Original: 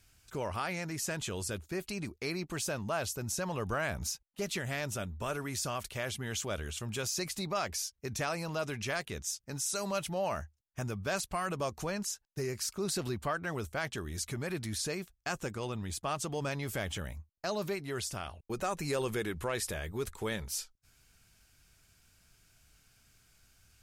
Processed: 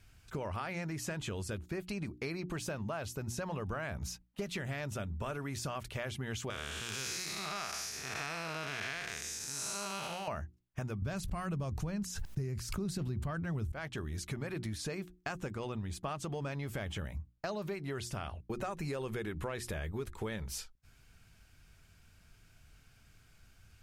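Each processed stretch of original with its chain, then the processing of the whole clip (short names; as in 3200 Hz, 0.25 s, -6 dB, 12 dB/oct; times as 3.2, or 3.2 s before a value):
6.5–10.28 time blur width 0.296 s + tilt shelf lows -9.5 dB, about 650 Hz + notch 570 Hz, Q 7.1
11.02–13.72 tone controls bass +14 dB, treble +4 dB + sustainer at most 35 dB/s
whole clip: tone controls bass +4 dB, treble -8 dB; notches 60/120/180/240/300/360 Hz; compressor, threshold -38 dBFS; gain +3 dB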